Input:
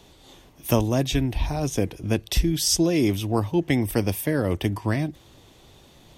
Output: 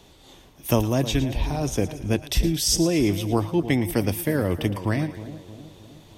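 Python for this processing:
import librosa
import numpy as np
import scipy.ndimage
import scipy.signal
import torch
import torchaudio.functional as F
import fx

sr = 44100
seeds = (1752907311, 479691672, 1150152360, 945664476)

y = fx.echo_split(x, sr, split_hz=840.0, low_ms=313, high_ms=113, feedback_pct=52, wet_db=-13.0)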